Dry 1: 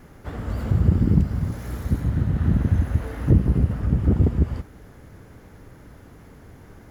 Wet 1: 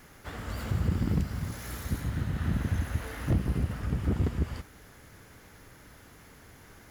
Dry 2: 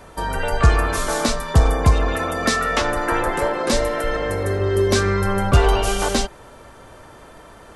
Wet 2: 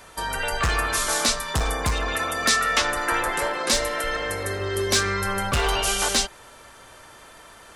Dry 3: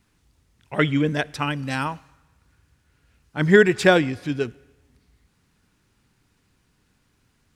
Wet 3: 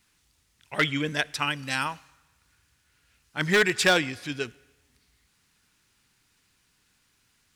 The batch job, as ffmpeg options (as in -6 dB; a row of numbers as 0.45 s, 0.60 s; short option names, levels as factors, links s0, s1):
-af "volume=3.16,asoftclip=hard,volume=0.316,tiltshelf=f=1100:g=-7,volume=0.75"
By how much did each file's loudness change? -9.5 LU, -3.0 LU, -4.5 LU